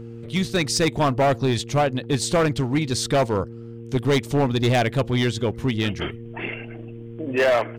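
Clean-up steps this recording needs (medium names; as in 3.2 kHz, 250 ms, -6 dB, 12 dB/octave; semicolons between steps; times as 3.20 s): clip repair -14.5 dBFS; de-hum 116 Hz, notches 4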